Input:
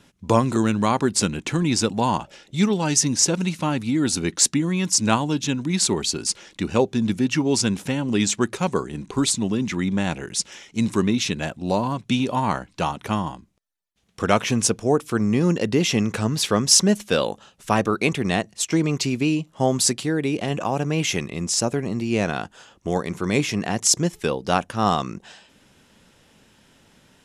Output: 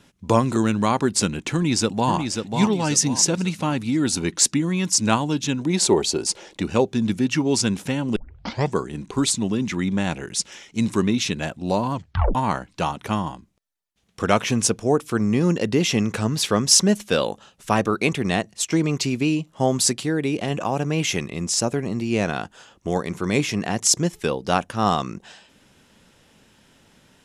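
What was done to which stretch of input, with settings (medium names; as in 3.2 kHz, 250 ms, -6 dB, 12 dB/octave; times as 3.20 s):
1.53–2.13 s: echo throw 540 ms, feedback 40%, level -5.5 dB
5.61–6.62 s: high-order bell 560 Hz +8 dB
8.16 s: tape start 0.60 s
11.94 s: tape stop 0.41 s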